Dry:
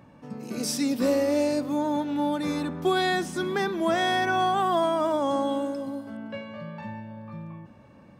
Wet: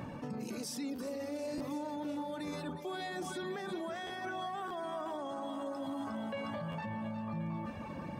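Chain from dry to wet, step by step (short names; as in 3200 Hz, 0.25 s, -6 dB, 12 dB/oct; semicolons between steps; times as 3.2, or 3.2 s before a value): split-band echo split 880 Hz, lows 0.114 s, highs 0.359 s, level -10.5 dB; reverse; compressor 16:1, threshold -37 dBFS, peak gain reduction 19 dB; reverse; reverb removal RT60 0.6 s; limiter -42 dBFS, peak gain reduction 12 dB; on a send: narrowing echo 0.525 s, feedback 60%, band-pass 630 Hz, level -8.5 dB; on the sum: stuck buffer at 0.95/1.57/4.06/4.67/6.71, samples 512, times 2; gain +9.5 dB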